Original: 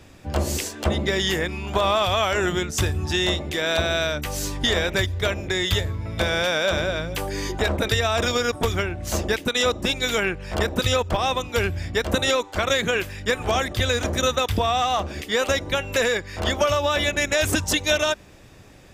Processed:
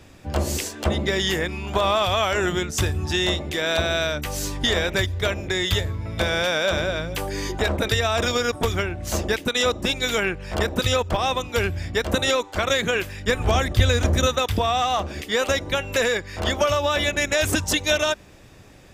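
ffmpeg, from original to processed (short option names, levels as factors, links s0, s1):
-filter_complex "[0:a]asettb=1/sr,asplit=3[s0][s1][s2];[s0]atrim=end=13.274[s3];[s1]atrim=start=13.27:end=14.27,asetpts=PTS-STARTPTS,afade=t=in:d=0.004:c=qsin,afade=t=out:st=0.996:d=0.004:c=qsin,lowshelf=f=140:g=11[s4];[s2]atrim=start=14.266[s5];[s3][s4]acrossfade=d=0.004:c1=hsin:c2=qsin[s6];[s6][s5]acrossfade=d=0.004:c1=qsin:c2=hsin"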